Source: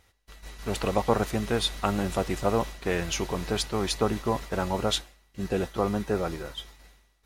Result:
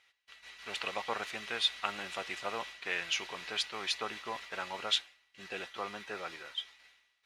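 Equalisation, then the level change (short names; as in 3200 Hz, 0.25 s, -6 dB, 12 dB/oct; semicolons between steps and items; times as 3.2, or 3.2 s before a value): band-pass 2600 Hz, Q 1.4; +2.0 dB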